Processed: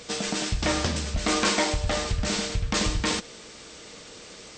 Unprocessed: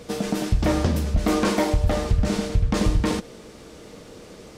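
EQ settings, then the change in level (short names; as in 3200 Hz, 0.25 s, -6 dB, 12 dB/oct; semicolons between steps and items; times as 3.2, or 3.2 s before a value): brick-wall FIR low-pass 8600 Hz; tilt shelf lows -7.5 dB, about 1100 Hz; 0.0 dB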